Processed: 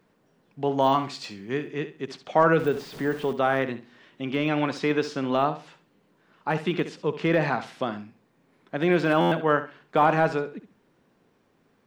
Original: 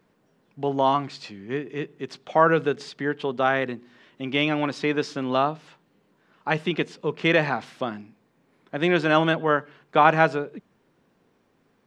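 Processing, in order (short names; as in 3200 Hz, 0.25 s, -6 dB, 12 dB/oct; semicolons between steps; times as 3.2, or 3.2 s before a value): 2.59–3.33 zero-crossing step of -34 dBFS; de-esser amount 95%; 0.78–1.68 high shelf 6100 Hz +9 dB; flutter echo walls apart 11.5 m, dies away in 0.32 s; stuck buffer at 9.2, samples 512, times 9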